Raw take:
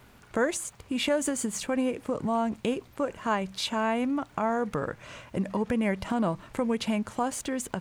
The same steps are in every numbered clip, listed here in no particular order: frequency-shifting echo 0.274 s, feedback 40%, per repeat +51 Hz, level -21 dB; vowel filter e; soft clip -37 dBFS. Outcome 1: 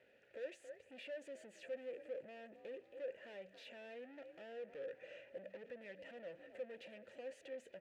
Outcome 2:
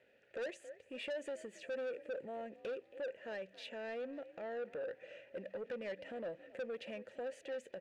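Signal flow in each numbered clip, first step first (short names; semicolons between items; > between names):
frequency-shifting echo > soft clip > vowel filter; frequency-shifting echo > vowel filter > soft clip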